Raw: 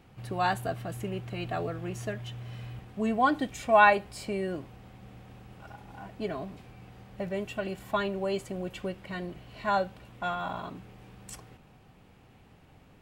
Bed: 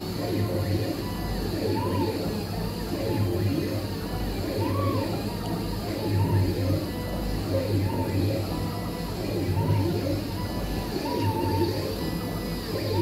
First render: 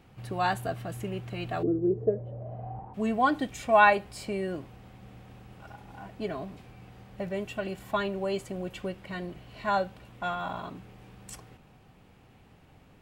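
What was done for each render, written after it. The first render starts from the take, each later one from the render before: 1.62–2.93 s: resonant low-pass 320 Hz -> 910 Hz, resonance Q 9.7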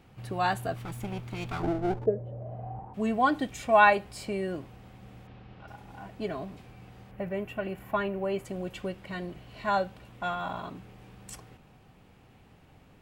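0.76–2.06 s: comb filter that takes the minimum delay 0.86 ms; 5.27–5.68 s: low-pass 4.6 kHz 24 dB/octave; 7.11–8.45 s: high-order bell 5.6 kHz -11 dB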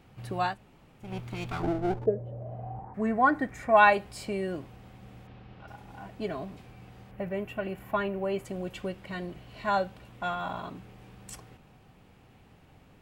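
0.50–1.07 s: room tone, crossfade 0.16 s; 2.84–3.77 s: resonant high shelf 2.4 kHz -8 dB, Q 3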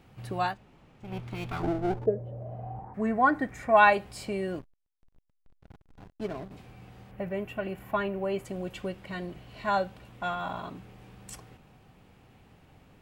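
0.48–1.57 s: decimation joined by straight lines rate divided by 3×; 4.59–6.51 s: hysteresis with a dead band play -34 dBFS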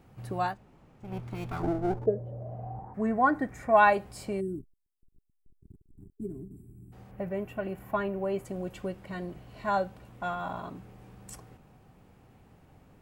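4.41–6.93 s: time-frequency box 410–7400 Hz -29 dB; peaking EQ 3.1 kHz -7 dB 1.6 oct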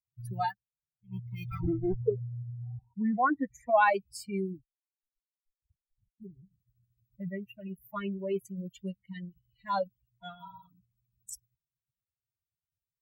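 expander on every frequency bin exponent 3; in parallel at -1.5 dB: compressor with a negative ratio -36 dBFS, ratio -1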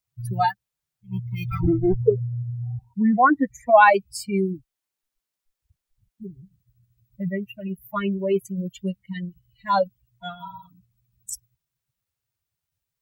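trim +10 dB

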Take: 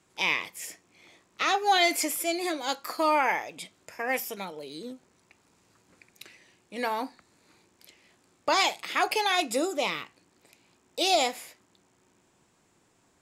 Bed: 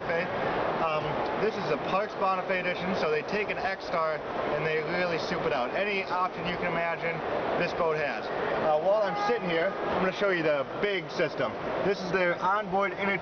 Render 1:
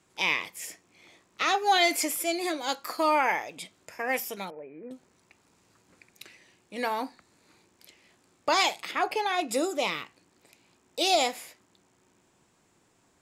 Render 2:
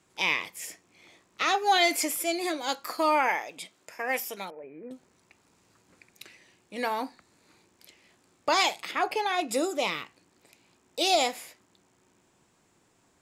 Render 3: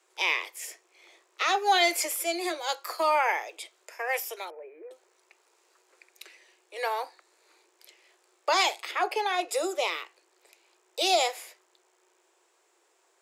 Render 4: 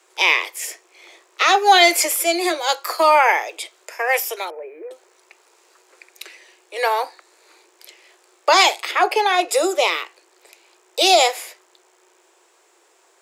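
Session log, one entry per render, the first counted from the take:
4.50–4.91 s: rippled Chebyshev low-pass 2.5 kHz, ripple 6 dB; 8.91–9.49 s: treble shelf 2.6 kHz -11 dB
3.28–4.64 s: high-pass 280 Hz 6 dB/octave
steep high-pass 340 Hz 96 dB/octave
trim +10.5 dB; peak limiter -1 dBFS, peak gain reduction 1 dB

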